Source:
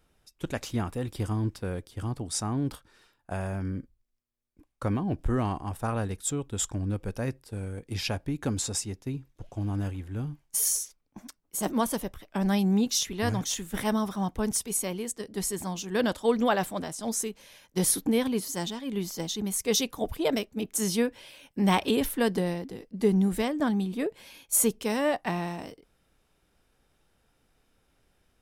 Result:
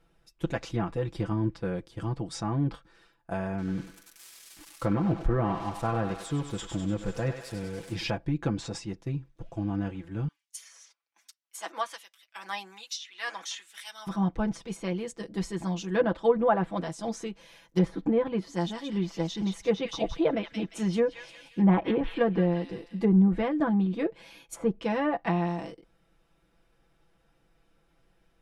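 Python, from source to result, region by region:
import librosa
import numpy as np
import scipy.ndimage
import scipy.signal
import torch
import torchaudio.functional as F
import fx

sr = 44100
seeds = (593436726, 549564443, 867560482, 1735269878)

y = fx.chain(x, sr, fx.crossing_spikes(level_db=-30.5),
    fx.echo_thinned(ms=97, feedback_pct=70, hz=590.0, wet_db=-6), at=(3.58, 8.1))
y = fx.chain(y, sr, fx.highpass(hz=210.0, slope=24),
    fx.filter_lfo_highpass(shape='sine', hz=1.2, low_hz=970.0, high_hz=3400.0, q=0.84), at=(10.28, 14.07))
y = fx.chain(y, sr, fx.high_shelf(hz=5300.0, db=-8.0),
    fx.echo_wet_highpass(ms=175, feedback_pct=36, hz=2000.0, wet_db=-4.0), at=(18.43, 23.04))
y = fx.env_lowpass_down(y, sr, base_hz=1300.0, full_db=-20.5)
y = fx.high_shelf(y, sr, hz=4700.0, db=-10.5)
y = y + 0.77 * np.pad(y, (int(6.0 * sr / 1000.0), 0))[:len(y)]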